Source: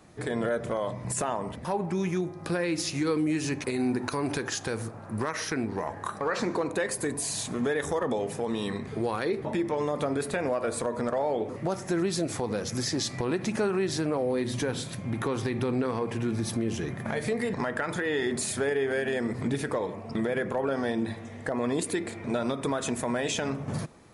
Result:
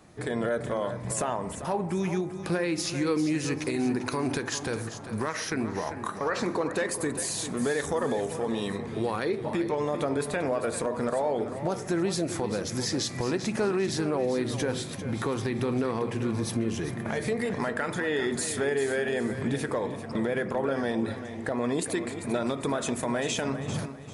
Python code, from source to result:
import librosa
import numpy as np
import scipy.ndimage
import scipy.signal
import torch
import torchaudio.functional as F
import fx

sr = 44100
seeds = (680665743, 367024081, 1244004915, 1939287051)

y = fx.echo_feedback(x, sr, ms=395, feedback_pct=31, wet_db=-11)